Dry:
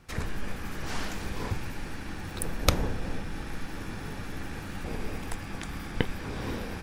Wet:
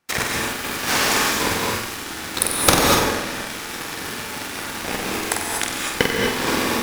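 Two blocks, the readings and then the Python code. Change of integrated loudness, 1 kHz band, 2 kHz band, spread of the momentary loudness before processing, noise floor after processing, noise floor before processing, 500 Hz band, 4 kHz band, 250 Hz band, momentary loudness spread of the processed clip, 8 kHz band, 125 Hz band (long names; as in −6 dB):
+14.0 dB, +16.0 dB, +16.5 dB, 10 LU, −31 dBFS, −39 dBFS, +13.5 dB, +17.0 dB, +10.0 dB, 12 LU, +19.0 dB, +2.5 dB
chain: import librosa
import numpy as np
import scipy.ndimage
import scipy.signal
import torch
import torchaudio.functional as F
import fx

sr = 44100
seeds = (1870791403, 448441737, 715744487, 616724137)

p1 = fx.highpass(x, sr, hz=530.0, slope=6)
p2 = fx.high_shelf(p1, sr, hz=7600.0, db=5.0)
p3 = fx.leveller(p2, sr, passes=5)
p4 = p3 + fx.room_flutter(p3, sr, wall_m=8.0, rt60_s=0.53, dry=0)
p5 = fx.rev_gated(p4, sr, seeds[0], gate_ms=270, shape='rising', drr_db=0.0)
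y = F.gain(torch.from_numpy(p5), -1.0).numpy()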